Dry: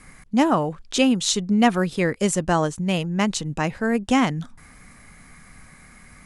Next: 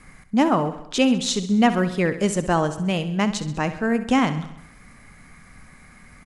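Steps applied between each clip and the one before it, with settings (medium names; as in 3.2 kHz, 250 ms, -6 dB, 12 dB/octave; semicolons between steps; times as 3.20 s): treble shelf 6.8 kHz -7.5 dB; on a send: feedback delay 66 ms, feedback 59%, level -13 dB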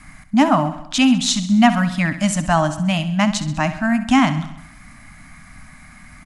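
elliptic band-stop 300–610 Hz; trim +5.5 dB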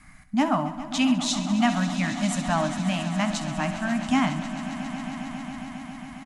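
doubling 16 ms -12.5 dB; echo with a slow build-up 136 ms, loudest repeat 5, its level -15.5 dB; trim -8.5 dB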